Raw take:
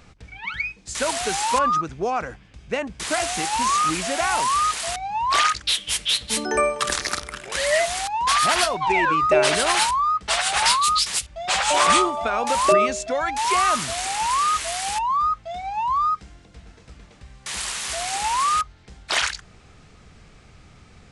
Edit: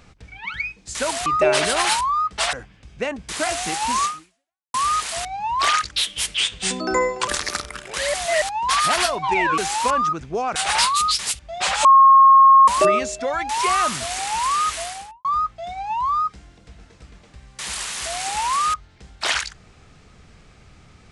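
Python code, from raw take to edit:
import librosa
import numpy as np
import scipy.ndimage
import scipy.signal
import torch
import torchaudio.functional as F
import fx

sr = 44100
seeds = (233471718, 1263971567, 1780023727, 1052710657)

y = fx.studio_fade_out(x, sr, start_s=14.62, length_s=0.5)
y = fx.edit(y, sr, fx.swap(start_s=1.26, length_s=0.98, other_s=9.16, other_length_s=1.27),
    fx.fade_out_span(start_s=3.76, length_s=0.69, curve='exp'),
    fx.speed_span(start_s=6.08, length_s=0.78, speed=0.86),
    fx.reverse_span(start_s=7.72, length_s=0.28),
    fx.bleep(start_s=11.72, length_s=0.83, hz=1080.0, db=-7.0), tone=tone)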